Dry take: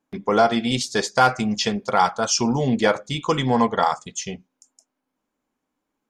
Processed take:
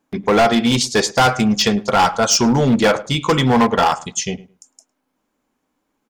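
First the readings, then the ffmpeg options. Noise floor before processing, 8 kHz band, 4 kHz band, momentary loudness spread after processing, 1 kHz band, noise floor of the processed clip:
-81 dBFS, +6.5 dB, +6.5 dB, 7 LU, +3.5 dB, -73 dBFS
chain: -filter_complex "[0:a]volume=7.08,asoftclip=hard,volume=0.141,asplit=2[s0][s1];[s1]adelay=106,lowpass=f=1900:p=1,volume=0.112,asplit=2[s2][s3];[s3]adelay=106,lowpass=f=1900:p=1,volume=0.18[s4];[s0][s2][s4]amix=inputs=3:normalize=0,volume=2.37"

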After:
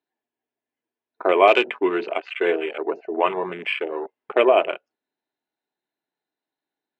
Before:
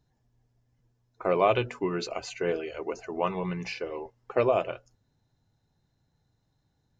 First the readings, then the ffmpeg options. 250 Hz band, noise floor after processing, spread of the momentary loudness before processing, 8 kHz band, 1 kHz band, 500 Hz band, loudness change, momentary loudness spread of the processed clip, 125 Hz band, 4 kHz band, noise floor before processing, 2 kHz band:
+6.5 dB, under -85 dBFS, 12 LU, no reading, +8.5 dB, +7.5 dB, +8.0 dB, 13 LU, under -10 dB, +9.5 dB, -74 dBFS, +12.0 dB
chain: -af "apsyclip=4.47,highpass=f=330:w=0.5412,highpass=f=330:w=1.3066,equalizer=f=510:t=q:w=4:g=-8,equalizer=f=820:t=q:w=4:g=-3,equalizer=f=1200:t=q:w=4:g=-5,equalizer=f=2500:t=q:w=4:g=3,lowpass=f=3500:w=0.5412,lowpass=f=3500:w=1.3066,afwtdn=0.0398,volume=0.891"

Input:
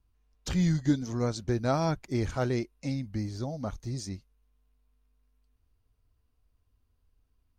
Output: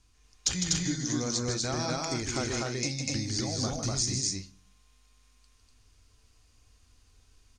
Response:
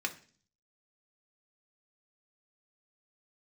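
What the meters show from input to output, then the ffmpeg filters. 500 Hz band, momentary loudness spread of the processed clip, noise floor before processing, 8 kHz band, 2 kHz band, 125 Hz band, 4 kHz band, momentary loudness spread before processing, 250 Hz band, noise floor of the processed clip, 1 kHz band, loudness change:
-3.0 dB, 4 LU, -73 dBFS, +16.5 dB, +4.0 dB, -3.0 dB, +12.0 dB, 10 LU, -3.0 dB, -64 dBFS, -1.5 dB, +0.5 dB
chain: -filter_complex "[0:a]highshelf=f=2300:g=11,acompressor=threshold=0.0126:ratio=10,lowpass=f=7200:t=q:w=2.7,aecho=1:1:154.5|244.9|285.7:0.501|0.891|0.282,asplit=2[s0][s1];[1:a]atrim=start_sample=2205,asetrate=43218,aresample=44100[s2];[s1][s2]afir=irnorm=-1:irlink=0,volume=0.501[s3];[s0][s3]amix=inputs=2:normalize=0,volume=1.58"

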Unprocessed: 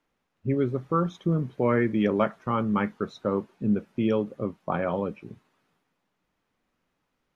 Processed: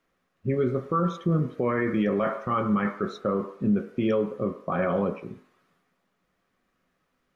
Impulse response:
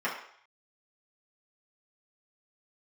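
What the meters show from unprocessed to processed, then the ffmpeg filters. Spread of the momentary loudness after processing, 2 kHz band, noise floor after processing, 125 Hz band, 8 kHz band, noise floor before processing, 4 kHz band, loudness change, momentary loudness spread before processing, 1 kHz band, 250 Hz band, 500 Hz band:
5 LU, +1.0 dB, -75 dBFS, +0.5 dB, no reading, -78 dBFS, -1.0 dB, +0.5 dB, 7 LU, +1.0 dB, 0.0 dB, +0.5 dB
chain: -filter_complex "[0:a]asplit=2[s0][s1];[1:a]atrim=start_sample=2205,lowpass=2500[s2];[s1][s2]afir=irnorm=-1:irlink=0,volume=0.251[s3];[s0][s3]amix=inputs=2:normalize=0,alimiter=limit=0.126:level=0:latency=1:release=22,equalizer=f=870:t=o:w=0.21:g=-9,volume=1.26"

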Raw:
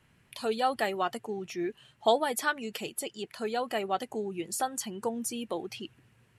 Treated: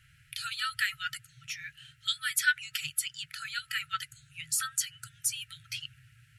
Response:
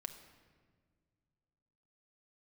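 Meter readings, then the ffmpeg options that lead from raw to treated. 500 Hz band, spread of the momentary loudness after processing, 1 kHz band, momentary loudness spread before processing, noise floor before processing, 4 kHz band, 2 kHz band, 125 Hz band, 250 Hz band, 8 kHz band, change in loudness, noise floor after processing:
under -40 dB, 13 LU, -10.0 dB, 10 LU, -66 dBFS, +5.5 dB, +5.5 dB, -4.5 dB, under -25 dB, +5.5 dB, -0.5 dB, -63 dBFS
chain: -af "afftfilt=real='re*(1-between(b*sr/4096,160,1300))':imag='im*(1-between(b*sr/4096,160,1300))':win_size=4096:overlap=0.75,volume=1.88"

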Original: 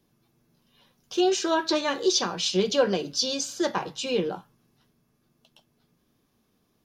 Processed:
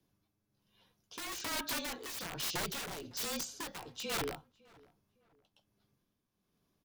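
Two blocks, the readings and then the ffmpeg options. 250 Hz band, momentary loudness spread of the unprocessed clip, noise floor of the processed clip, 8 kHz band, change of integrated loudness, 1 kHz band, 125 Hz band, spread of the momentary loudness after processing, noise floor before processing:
-18.0 dB, 6 LU, -83 dBFS, -9.5 dB, -12.5 dB, -13.0 dB, -11.0 dB, 8 LU, -71 dBFS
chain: -filter_complex "[0:a]aeval=exprs='(mod(12.6*val(0)+1,2)-1)/12.6':c=same,tremolo=f=1.2:d=0.59,asplit=2[s0][s1];[s1]adelay=556,lowpass=f=1800:p=1,volume=0.0668,asplit=2[s2][s3];[s3]adelay=556,lowpass=f=1800:p=1,volume=0.34[s4];[s2][s4]amix=inputs=2:normalize=0[s5];[s0][s5]amix=inputs=2:normalize=0,afreqshift=-32,volume=0.398"

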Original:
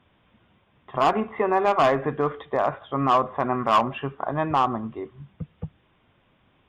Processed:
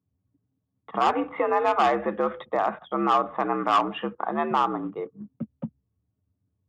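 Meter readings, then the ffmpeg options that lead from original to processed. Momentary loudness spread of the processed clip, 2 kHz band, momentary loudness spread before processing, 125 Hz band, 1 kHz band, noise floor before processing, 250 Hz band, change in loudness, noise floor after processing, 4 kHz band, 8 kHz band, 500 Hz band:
14 LU, -1.0 dB, 17 LU, -9.0 dB, -1.0 dB, -64 dBFS, -1.0 dB, -1.5 dB, -79 dBFS, -1.0 dB, no reading, -2.5 dB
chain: -filter_complex "[0:a]anlmdn=0.0631,asplit=2[s0][s1];[s1]acompressor=threshold=0.0282:ratio=10,volume=0.841[s2];[s0][s2]amix=inputs=2:normalize=0,aresample=22050,aresample=44100,afreqshift=66,volume=0.708"

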